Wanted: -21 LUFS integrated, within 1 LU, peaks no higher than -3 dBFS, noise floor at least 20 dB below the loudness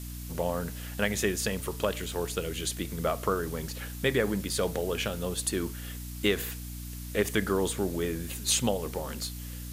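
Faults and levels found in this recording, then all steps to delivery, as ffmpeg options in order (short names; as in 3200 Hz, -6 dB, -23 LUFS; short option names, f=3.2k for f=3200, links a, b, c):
hum 60 Hz; harmonics up to 300 Hz; hum level -37 dBFS; noise floor -39 dBFS; noise floor target -51 dBFS; loudness -31.0 LUFS; peak -12.0 dBFS; loudness target -21.0 LUFS
-> -af "bandreject=f=60:t=h:w=6,bandreject=f=120:t=h:w=6,bandreject=f=180:t=h:w=6,bandreject=f=240:t=h:w=6,bandreject=f=300:t=h:w=6"
-af "afftdn=nr=12:nf=-39"
-af "volume=10dB,alimiter=limit=-3dB:level=0:latency=1"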